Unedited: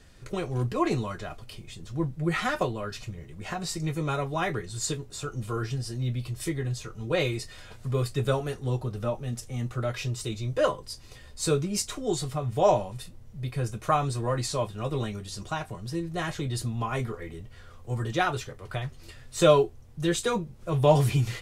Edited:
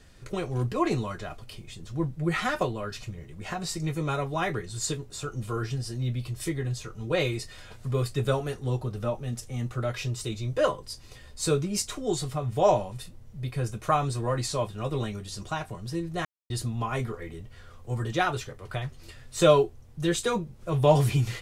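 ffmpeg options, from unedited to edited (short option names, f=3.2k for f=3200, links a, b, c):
-filter_complex "[0:a]asplit=3[a][b][c];[a]atrim=end=16.25,asetpts=PTS-STARTPTS,afade=t=out:st=16.246:d=0.004:c=hsin[d];[b]atrim=start=16.25:end=16.5,asetpts=PTS-STARTPTS,volume=0[e];[c]atrim=start=16.5,asetpts=PTS-STARTPTS,afade=t=in:d=0.004:c=hsin[f];[d][e][f]concat=n=3:v=0:a=1"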